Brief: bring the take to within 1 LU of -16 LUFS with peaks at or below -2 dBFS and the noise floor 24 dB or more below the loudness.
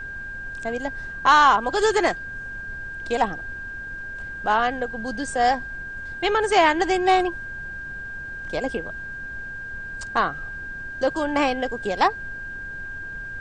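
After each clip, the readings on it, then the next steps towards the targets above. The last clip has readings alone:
steady tone 1.6 kHz; tone level -32 dBFS; noise floor -35 dBFS; noise floor target -48 dBFS; loudness -24.0 LUFS; peak level -5.5 dBFS; loudness target -16.0 LUFS
-> band-stop 1.6 kHz, Q 30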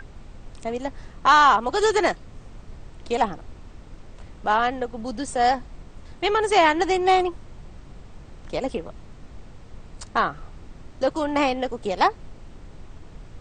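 steady tone not found; noise floor -45 dBFS; noise floor target -47 dBFS
-> noise print and reduce 6 dB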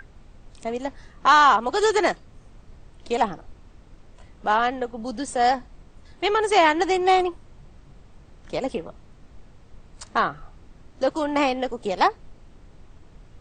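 noise floor -50 dBFS; loudness -22.5 LUFS; peak level -5.5 dBFS; loudness target -16.0 LUFS
-> trim +6.5 dB; peak limiter -2 dBFS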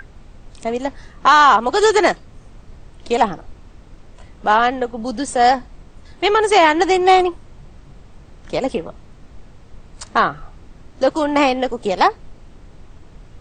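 loudness -16.5 LUFS; peak level -2.0 dBFS; noise floor -44 dBFS

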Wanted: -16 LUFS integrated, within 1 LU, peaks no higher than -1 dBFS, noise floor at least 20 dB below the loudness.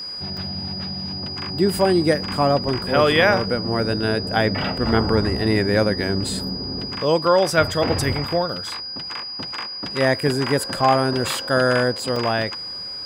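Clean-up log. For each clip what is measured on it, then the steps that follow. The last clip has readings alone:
dropouts 3; longest dropout 3.3 ms; steady tone 4.9 kHz; tone level -29 dBFS; loudness -21.0 LUFS; peak level -3.0 dBFS; loudness target -16.0 LUFS
-> interpolate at 0.37/6.39/12.16 s, 3.3 ms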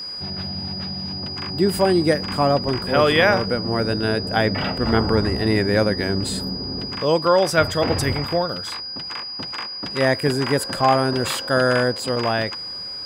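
dropouts 0; steady tone 4.9 kHz; tone level -29 dBFS
-> band-stop 4.9 kHz, Q 30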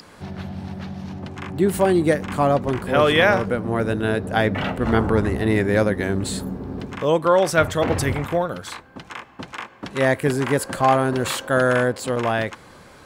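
steady tone not found; loudness -20.5 LUFS; peak level -3.0 dBFS; loudness target -16.0 LUFS
-> trim +4.5 dB; peak limiter -1 dBFS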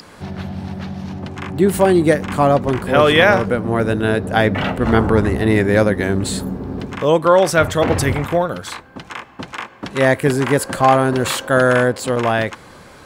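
loudness -16.0 LUFS; peak level -1.0 dBFS; noise floor -42 dBFS

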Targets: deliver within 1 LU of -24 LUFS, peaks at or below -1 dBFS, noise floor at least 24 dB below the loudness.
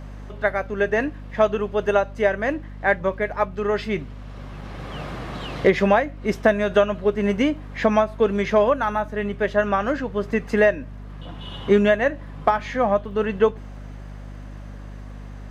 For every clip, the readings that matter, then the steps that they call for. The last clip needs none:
tick rate 25 per s; hum 50 Hz; highest harmonic 250 Hz; hum level -34 dBFS; loudness -22.0 LUFS; peak level -5.5 dBFS; loudness target -24.0 LUFS
-> de-click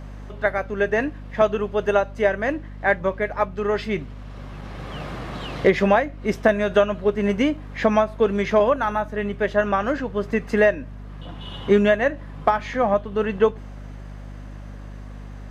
tick rate 0.064 per s; hum 50 Hz; highest harmonic 250 Hz; hum level -34 dBFS
-> de-hum 50 Hz, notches 5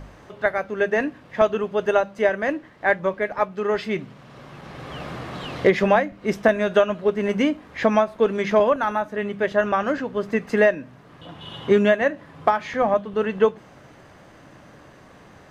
hum not found; loudness -22.0 LUFS; peak level -5.5 dBFS; loudness target -24.0 LUFS
-> trim -2 dB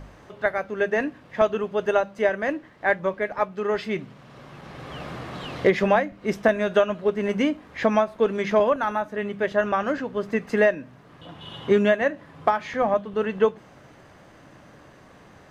loudness -24.0 LUFS; peak level -7.5 dBFS; noise floor -51 dBFS

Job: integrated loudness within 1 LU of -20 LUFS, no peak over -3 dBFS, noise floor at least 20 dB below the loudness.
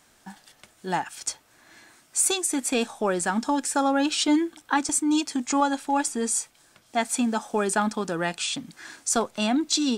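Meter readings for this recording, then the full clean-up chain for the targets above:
dropouts 1; longest dropout 1.4 ms; loudness -25.5 LUFS; peak level -10.0 dBFS; loudness target -20.0 LUFS
-> interpolate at 4.89 s, 1.4 ms; trim +5.5 dB

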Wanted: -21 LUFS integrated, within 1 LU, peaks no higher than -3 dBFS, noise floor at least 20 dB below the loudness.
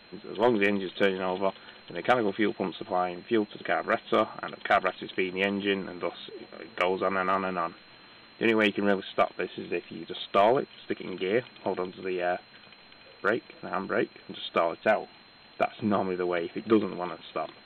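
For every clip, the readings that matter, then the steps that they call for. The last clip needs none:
steady tone 4.1 kHz; tone level -57 dBFS; loudness -28.5 LUFS; peak level -12.5 dBFS; loudness target -21.0 LUFS
-> band-stop 4.1 kHz, Q 30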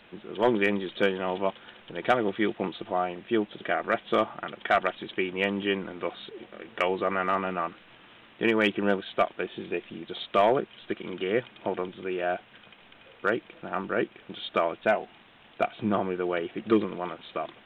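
steady tone not found; loudness -28.5 LUFS; peak level -12.5 dBFS; loudness target -21.0 LUFS
-> trim +7.5 dB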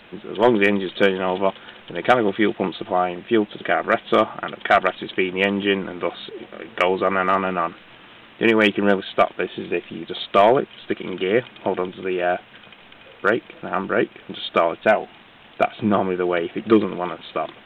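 loudness -21.0 LUFS; peak level -5.0 dBFS; noise floor -48 dBFS

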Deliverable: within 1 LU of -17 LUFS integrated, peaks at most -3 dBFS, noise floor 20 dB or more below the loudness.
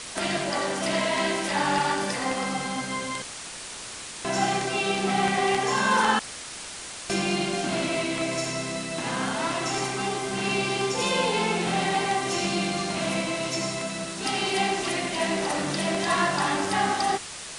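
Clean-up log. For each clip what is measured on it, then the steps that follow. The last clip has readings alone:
noise floor -39 dBFS; noise floor target -46 dBFS; loudness -26.0 LUFS; peak level -9.0 dBFS; loudness target -17.0 LUFS
-> noise print and reduce 7 dB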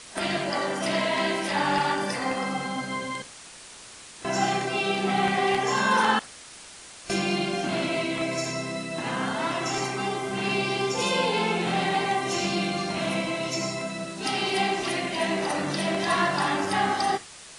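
noise floor -46 dBFS; loudness -26.0 LUFS; peak level -9.5 dBFS; loudness target -17.0 LUFS
-> trim +9 dB; peak limiter -3 dBFS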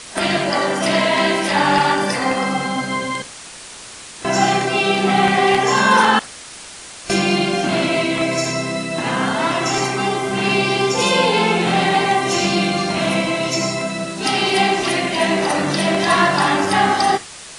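loudness -17.0 LUFS; peak level -3.0 dBFS; noise floor -37 dBFS

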